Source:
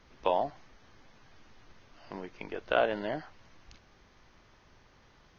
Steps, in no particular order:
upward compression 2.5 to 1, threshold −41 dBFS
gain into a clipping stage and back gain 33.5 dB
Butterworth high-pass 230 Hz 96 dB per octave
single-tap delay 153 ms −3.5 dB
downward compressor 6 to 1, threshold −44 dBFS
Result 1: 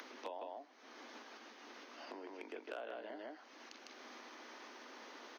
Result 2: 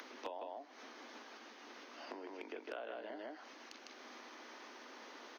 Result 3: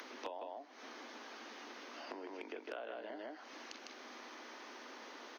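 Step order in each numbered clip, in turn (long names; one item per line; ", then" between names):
single-tap delay, then upward compression, then downward compressor, then gain into a clipping stage and back, then Butterworth high-pass
single-tap delay, then downward compressor, then upward compression, then Butterworth high-pass, then gain into a clipping stage and back
single-tap delay, then downward compressor, then Butterworth high-pass, then gain into a clipping stage and back, then upward compression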